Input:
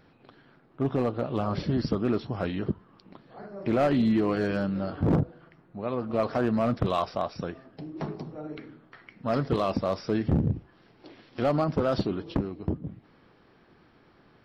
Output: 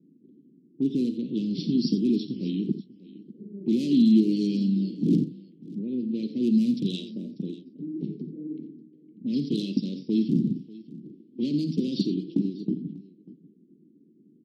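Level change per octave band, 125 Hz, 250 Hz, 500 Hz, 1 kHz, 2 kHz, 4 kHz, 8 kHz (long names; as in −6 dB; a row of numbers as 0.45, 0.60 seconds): −2.5 dB, +5.0 dB, −7.5 dB, below −40 dB, below −15 dB, +3.5 dB, can't be measured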